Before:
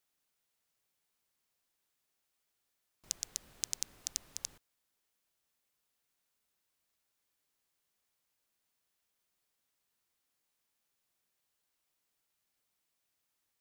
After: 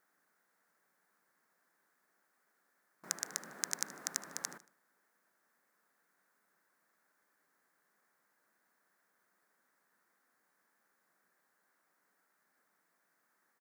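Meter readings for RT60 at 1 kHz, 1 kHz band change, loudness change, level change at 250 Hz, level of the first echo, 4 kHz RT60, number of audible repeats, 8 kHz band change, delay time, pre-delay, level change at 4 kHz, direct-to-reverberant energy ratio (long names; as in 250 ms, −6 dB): no reverb audible, +13.5 dB, +0.5 dB, +10.5 dB, −17.5 dB, no reverb audible, 3, 0.0 dB, 76 ms, no reverb audible, −1.5 dB, no reverb audible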